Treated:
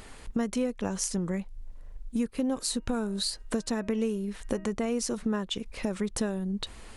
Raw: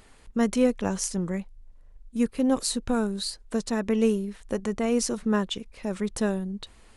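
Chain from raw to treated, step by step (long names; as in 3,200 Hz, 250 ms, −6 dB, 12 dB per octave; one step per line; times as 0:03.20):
0:02.40–0:04.72: hum removal 314.6 Hz, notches 9
downward compressor 5 to 1, threshold −35 dBFS, peak gain reduction 16.5 dB
level +7.5 dB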